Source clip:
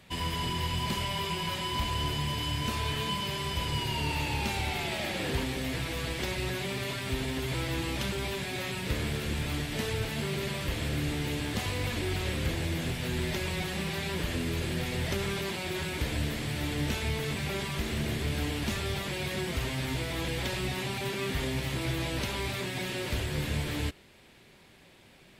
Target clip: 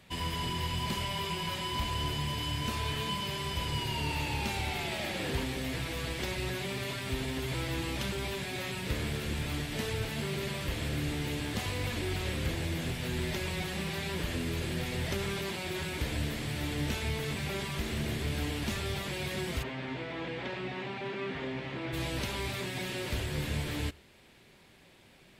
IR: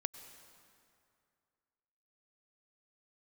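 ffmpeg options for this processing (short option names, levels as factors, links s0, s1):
-filter_complex "[0:a]asplit=3[s0][s1][s2];[s0]afade=t=out:st=19.62:d=0.02[s3];[s1]highpass=180,lowpass=2500,afade=t=in:st=19.62:d=0.02,afade=t=out:st=21.92:d=0.02[s4];[s2]afade=t=in:st=21.92:d=0.02[s5];[s3][s4][s5]amix=inputs=3:normalize=0[s6];[1:a]atrim=start_sample=2205,afade=t=out:st=0.14:d=0.01,atrim=end_sample=6615[s7];[s6][s7]afir=irnorm=-1:irlink=0,volume=0.891"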